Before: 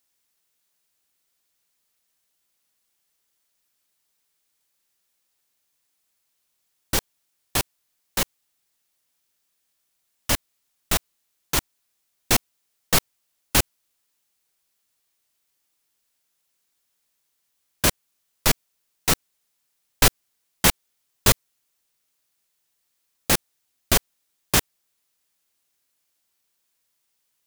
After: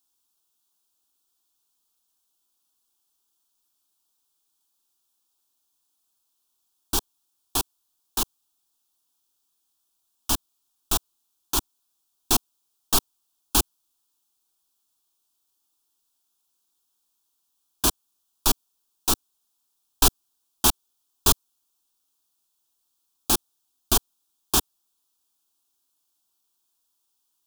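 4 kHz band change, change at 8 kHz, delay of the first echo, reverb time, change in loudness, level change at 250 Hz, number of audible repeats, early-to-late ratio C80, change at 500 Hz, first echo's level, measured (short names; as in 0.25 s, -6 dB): -2.0 dB, -0.5 dB, none, none, -1.5 dB, -2.5 dB, none, none, -5.0 dB, none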